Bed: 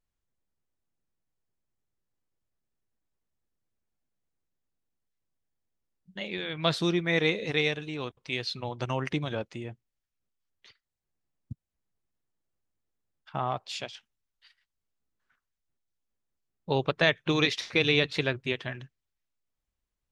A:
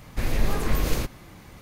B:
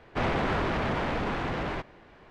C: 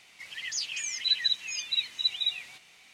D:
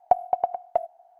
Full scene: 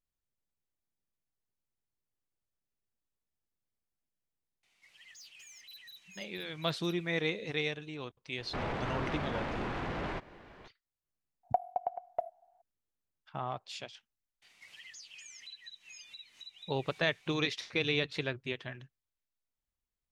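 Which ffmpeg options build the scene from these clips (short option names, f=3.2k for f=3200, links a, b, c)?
-filter_complex "[3:a]asplit=2[a][b];[0:a]volume=-7dB[c];[a]asoftclip=type=tanh:threshold=-31.5dB[d];[2:a]alimiter=level_in=5dB:limit=-24dB:level=0:latency=1:release=166,volume=-5dB[e];[b]acompressor=threshold=-41dB:ratio=6:attack=24:release=159:knee=6:detection=rms[f];[d]atrim=end=2.93,asetpts=PTS-STARTPTS,volume=-17dB,afade=t=in:d=0.004:c=hsin,afade=t=out:st=2.926:d=0.004:c=hsin,adelay=4630[g];[e]atrim=end=2.3,asetpts=PTS-STARTPTS,volume=-0.5dB,afade=t=in:d=0.004:c=hsin,afade=t=out:st=2.296:d=0.004:c=hsin,adelay=8380[h];[4:a]atrim=end=1.19,asetpts=PTS-STARTPTS,volume=-10.5dB,afade=t=in:d=0.004:c=hsin,afade=t=out:st=1.186:d=0.004:c=hsin,adelay=11430[i];[f]atrim=end=2.93,asetpts=PTS-STARTPTS,volume=-8.5dB,afade=t=in:d=0.004:c=hsin,afade=t=out:st=2.926:d=0.004:c=hsin,adelay=14420[j];[c][g][h][i][j]amix=inputs=5:normalize=0"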